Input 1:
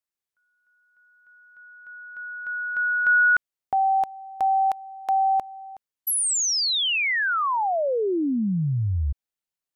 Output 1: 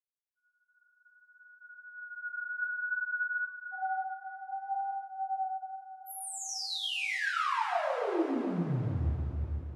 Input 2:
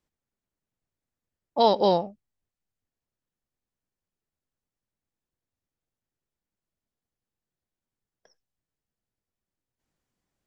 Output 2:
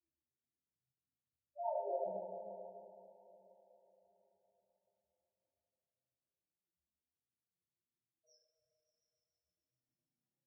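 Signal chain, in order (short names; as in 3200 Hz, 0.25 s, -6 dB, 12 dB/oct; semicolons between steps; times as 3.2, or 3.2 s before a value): HPF 76 Hz 6 dB/oct; reverse; compressor 6:1, threshold -30 dBFS; reverse; low shelf 290 Hz -8.5 dB; de-hum 283.1 Hz, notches 4; loudest bins only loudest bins 2; low shelf 120 Hz +7.5 dB; repeats that get brighter 0.143 s, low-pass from 750 Hz, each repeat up 1 oct, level -6 dB; chorus voices 2, 0.58 Hz, delay 29 ms, depth 4.5 ms; two-slope reverb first 0.44 s, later 4.5 s, from -21 dB, DRR -7.5 dB; gain -3 dB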